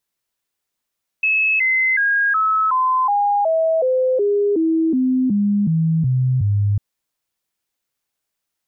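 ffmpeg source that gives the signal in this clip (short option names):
-f lavfi -i "aevalsrc='0.2*clip(min(mod(t,0.37),0.37-mod(t,0.37))/0.005,0,1)*sin(2*PI*2590*pow(2,-floor(t/0.37)/3)*mod(t,0.37))':d=5.55:s=44100"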